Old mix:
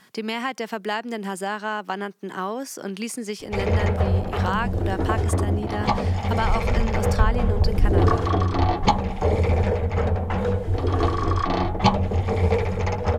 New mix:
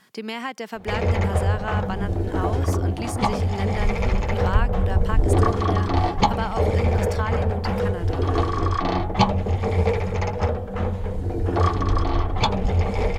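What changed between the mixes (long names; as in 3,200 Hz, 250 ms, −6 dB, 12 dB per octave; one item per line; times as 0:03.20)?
speech −3.0 dB
background: entry −2.65 s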